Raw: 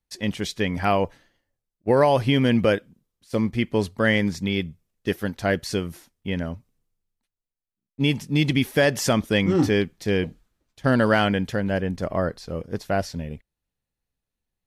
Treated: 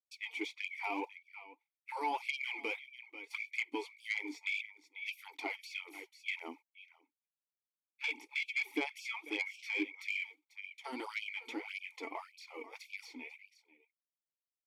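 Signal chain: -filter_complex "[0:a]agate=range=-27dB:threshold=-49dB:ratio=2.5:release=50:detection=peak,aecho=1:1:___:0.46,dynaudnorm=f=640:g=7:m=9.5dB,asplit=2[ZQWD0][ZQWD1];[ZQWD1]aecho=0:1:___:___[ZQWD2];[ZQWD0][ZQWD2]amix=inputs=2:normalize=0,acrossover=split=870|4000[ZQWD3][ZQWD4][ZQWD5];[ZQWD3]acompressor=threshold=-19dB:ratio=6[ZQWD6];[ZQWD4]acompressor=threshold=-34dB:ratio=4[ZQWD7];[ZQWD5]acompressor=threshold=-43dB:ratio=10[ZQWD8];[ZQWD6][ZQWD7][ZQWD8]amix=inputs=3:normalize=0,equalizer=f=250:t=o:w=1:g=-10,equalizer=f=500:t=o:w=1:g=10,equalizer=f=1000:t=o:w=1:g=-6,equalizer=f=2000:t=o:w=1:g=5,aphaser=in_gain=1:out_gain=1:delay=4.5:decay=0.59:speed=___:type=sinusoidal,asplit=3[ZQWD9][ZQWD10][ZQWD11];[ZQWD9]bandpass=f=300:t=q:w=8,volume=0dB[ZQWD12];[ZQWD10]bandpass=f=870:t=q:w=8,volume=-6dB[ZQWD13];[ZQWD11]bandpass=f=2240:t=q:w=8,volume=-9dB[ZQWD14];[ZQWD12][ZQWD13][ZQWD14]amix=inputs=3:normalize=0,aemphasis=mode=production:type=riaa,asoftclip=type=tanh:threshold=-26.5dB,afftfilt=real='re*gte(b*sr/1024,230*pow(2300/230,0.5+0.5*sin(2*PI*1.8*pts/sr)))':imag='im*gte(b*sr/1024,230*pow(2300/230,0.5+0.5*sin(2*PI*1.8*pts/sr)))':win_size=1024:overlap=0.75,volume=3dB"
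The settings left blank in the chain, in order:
0.9, 490, 0.0891, 1.7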